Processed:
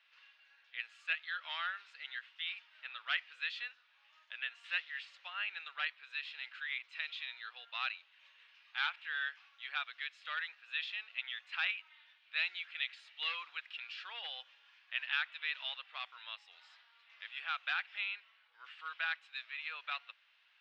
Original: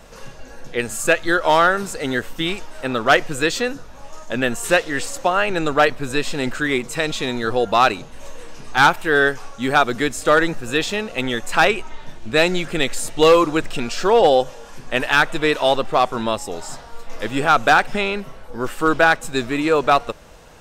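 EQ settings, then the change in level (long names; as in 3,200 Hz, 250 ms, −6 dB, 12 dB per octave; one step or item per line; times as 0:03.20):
four-pole ladder high-pass 2,300 Hz, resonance 25%
high-frequency loss of the air 370 metres
head-to-tape spacing loss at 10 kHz 24 dB
+6.0 dB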